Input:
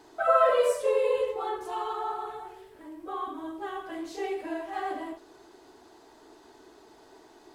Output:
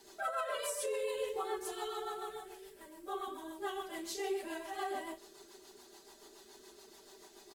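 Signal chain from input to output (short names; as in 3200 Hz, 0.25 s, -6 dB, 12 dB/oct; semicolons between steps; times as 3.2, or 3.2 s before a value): pre-emphasis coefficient 0.8; comb 5.1 ms, depth 99%; limiter -34 dBFS, peak gain reduction 11 dB; rotary speaker horn 7 Hz; gain +7.5 dB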